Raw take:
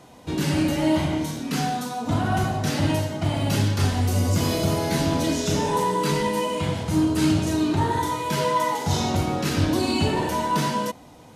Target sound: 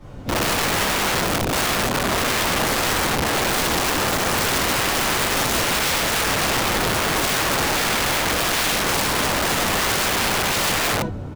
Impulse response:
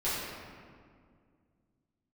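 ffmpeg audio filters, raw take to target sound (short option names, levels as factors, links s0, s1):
-filter_complex "[0:a]lowshelf=f=270:g=8.5,asplit=2[s0][s1];[s1]adelay=1050,volume=0.0562,highshelf=f=4000:g=-23.6[s2];[s0][s2]amix=inputs=2:normalize=0,asplit=4[s3][s4][s5][s6];[s4]asetrate=29433,aresample=44100,atempo=1.49831,volume=0.562[s7];[s5]asetrate=33038,aresample=44100,atempo=1.33484,volume=0.631[s8];[s6]asetrate=66075,aresample=44100,atempo=0.66742,volume=0.794[s9];[s3][s7][s8][s9]amix=inputs=4:normalize=0,acrossover=split=250[s10][s11];[s10]acompressor=threshold=0.0708:ratio=2.5[s12];[s12][s11]amix=inputs=2:normalize=0[s13];[1:a]atrim=start_sample=2205,afade=t=out:st=0.34:d=0.01,atrim=end_sample=15435,asetrate=66150,aresample=44100[s14];[s13][s14]afir=irnorm=-1:irlink=0,flanger=delay=5.9:depth=2.7:regen=-79:speed=1.3:shape=sinusoidal,bass=f=250:g=6,treble=f=4000:g=-5,aeval=exprs='(mod(6.31*val(0)+1,2)-1)/6.31':c=same"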